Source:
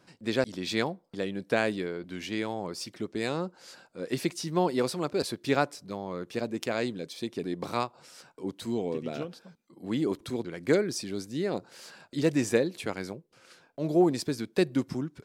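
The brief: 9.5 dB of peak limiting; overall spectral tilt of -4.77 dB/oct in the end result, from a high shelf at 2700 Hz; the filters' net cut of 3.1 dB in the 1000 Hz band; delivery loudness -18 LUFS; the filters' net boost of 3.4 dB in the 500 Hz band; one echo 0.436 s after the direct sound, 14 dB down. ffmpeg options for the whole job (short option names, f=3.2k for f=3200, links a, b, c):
-af "equalizer=f=500:t=o:g=6,equalizer=f=1k:t=o:g=-8.5,highshelf=f=2.7k:g=4,alimiter=limit=-17.5dB:level=0:latency=1,aecho=1:1:436:0.2,volume=13dB"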